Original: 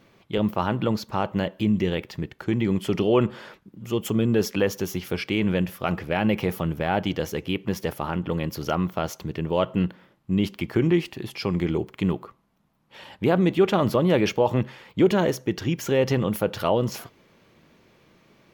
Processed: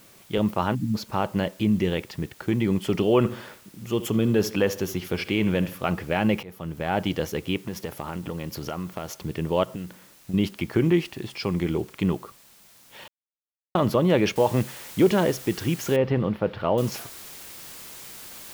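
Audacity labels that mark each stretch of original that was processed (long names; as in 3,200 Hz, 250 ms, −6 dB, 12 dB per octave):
0.750000	0.950000	time-frequency box erased 320–5,600 Hz
3.170000	5.860000	bucket-brigade delay 74 ms, stages 2,048, feedback 37%, level −14 dB
6.430000	7.030000	fade in linear, from −22 dB
7.570000	9.100000	downward compressor 5 to 1, threshold −27 dBFS
9.630000	10.340000	downward compressor 12 to 1, threshold −29 dBFS
11.220000	11.930000	elliptic low-pass filter 9,300 Hz
13.080000	13.750000	silence
14.360000	14.360000	noise floor change −54 dB −42 dB
15.960000	16.780000	high-frequency loss of the air 380 metres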